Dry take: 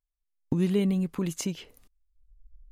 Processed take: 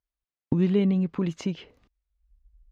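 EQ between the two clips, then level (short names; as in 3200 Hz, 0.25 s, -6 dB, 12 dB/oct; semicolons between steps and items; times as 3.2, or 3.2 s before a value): HPF 46 Hz; air absorption 200 m; +3.0 dB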